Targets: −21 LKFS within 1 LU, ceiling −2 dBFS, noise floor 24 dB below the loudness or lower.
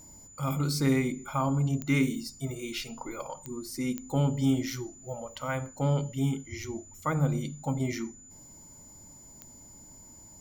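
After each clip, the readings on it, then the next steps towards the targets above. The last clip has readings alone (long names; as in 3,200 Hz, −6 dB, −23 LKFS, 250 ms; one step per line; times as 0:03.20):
number of clicks 4; interfering tone 7,000 Hz; level of the tone −50 dBFS; integrated loudness −31.0 LKFS; sample peak −13.5 dBFS; target loudness −21.0 LKFS
→ click removal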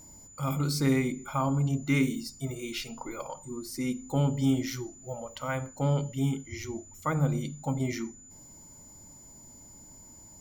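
number of clicks 0; interfering tone 7,000 Hz; level of the tone −50 dBFS
→ notch filter 7,000 Hz, Q 30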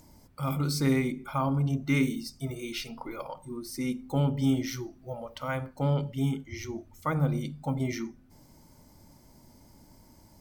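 interfering tone none found; integrated loudness −31.0 LKFS; sample peak −13.5 dBFS; target loudness −21.0 LKFS
→ level +10 dB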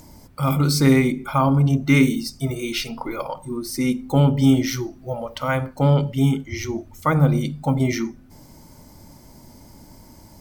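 integrated loudness −21.0 LKFS; sample peak −3.5 dBFS; background noise floor −48 dBFS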